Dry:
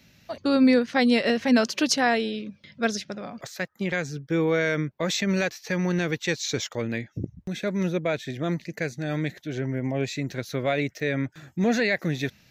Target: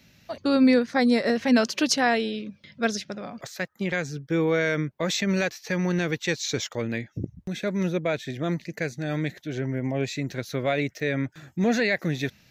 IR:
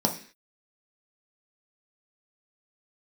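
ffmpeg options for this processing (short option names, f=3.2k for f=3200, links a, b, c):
-filter_complex "[0:a]asettb=1/sr,asplit=3[a][b][c];[a]atrim=end=0.874[d];[b]atrim=start=0.87:end=1.36,asetpts=PTS-STARTPTS,afade=t=in:d=0.004:c=qsin,afade=t=out:st=0.486:d=0.004:c=qsin,equalizer=f=2.9k:w=3.6:g=-14[e];[c]atrim=start=1.356[f];[d][e]acrossfade=d=0.004:c1=hsin:c2=qsin[g];[g][f]acrossfade=d=0.004:c1=qsin:c2=hsin"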